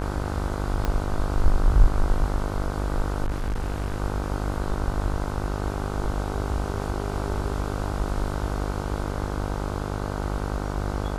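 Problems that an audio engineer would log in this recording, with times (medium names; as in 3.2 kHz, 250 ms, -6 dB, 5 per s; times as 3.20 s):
buzz 50 Hz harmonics 31 -29 dBFS
0.85 s: pop -12 dBFS
3.24–4.00 s: clipped -22.5 dBFS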